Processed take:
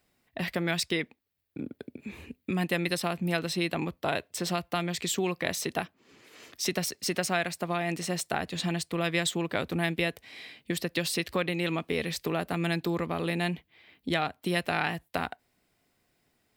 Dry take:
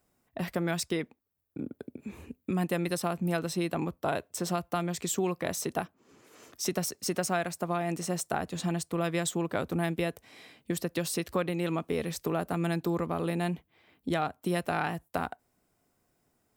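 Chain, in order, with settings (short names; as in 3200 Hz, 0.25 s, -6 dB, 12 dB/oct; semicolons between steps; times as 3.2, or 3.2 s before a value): band shelf 2900 Hz +8 dB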